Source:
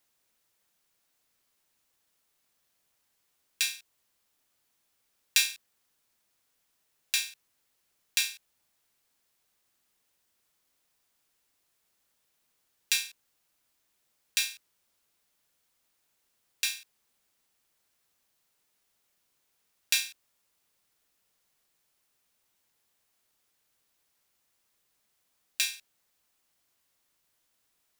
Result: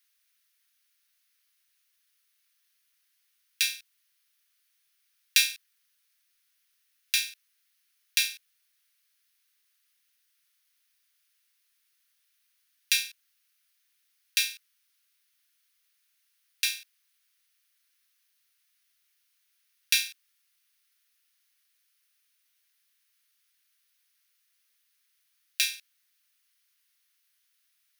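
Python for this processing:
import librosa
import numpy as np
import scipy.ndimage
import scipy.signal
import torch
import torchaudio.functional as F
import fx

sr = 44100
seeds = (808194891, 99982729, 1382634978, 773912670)

p1 = scipy.signal.sosfilt(scipy.signal.butter(4, 1500.0, 'highpass', fs=sr, output='sos'), x)
p2 = fx.peak_eq(p1, sr, hz=7500.0, db=-9.5, octaves=0.21)
p3 = fx.quant_float(p2, sr, bits=2)
y = p2 + (p3 * librosa.db_to_amplitude(-7.5))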